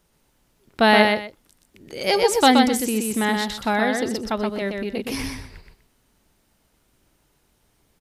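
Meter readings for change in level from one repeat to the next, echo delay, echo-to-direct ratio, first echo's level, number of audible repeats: -13.0 dB, 124 ms, -4.0 dB, -4.0 dB, 2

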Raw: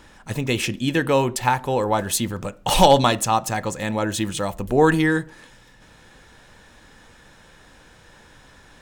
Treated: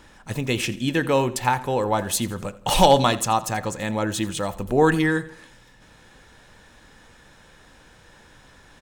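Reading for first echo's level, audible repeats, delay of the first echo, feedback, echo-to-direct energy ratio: -19.0 dB, 3, 84 ms, 45%, -18.0 dB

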